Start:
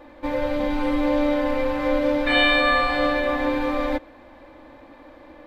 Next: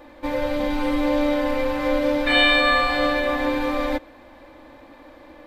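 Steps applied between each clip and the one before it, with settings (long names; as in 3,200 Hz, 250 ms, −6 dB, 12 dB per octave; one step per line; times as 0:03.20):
high-shelf EQ 4,200 Hz +7.5 dB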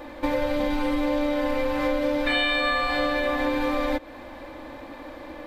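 downward compressor 5 to 1, threshold −28 dBFS, peak gain reduction 13.5 dB
level +6 dB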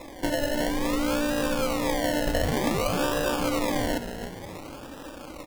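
echo with shifted repeats 297 ms, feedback 47%, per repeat −57 Hz, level −10 dB
sample-and-hold swept by an LFO 29×, swing 60% 0.55 Hz
level −2 dB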